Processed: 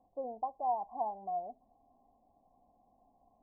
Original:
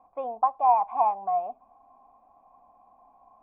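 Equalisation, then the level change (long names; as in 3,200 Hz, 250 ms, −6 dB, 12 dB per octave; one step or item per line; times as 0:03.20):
Gaussian smoothing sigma 15 samples
0.0 dB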